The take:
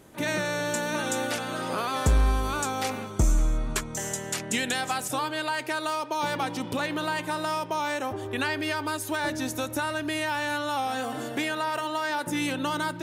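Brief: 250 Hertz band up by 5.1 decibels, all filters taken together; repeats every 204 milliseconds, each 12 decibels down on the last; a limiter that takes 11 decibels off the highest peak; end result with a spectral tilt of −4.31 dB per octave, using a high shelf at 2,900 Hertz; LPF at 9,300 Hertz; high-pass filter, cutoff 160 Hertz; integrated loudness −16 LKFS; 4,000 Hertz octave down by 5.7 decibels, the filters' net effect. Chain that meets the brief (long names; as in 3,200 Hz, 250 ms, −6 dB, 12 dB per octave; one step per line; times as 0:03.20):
high-pass filter 160 Hz
low-pass filter 9,300 Hz
parametric band 250 Hz +7 dB
high-shelf EQ 2,900 Hz −3 dB
parametric band 4,000 Hz −5 dB
brickwall limiter −20.5 dBFS
repeating echo 204 ms, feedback 25%, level −12 dB
level +13.5 dB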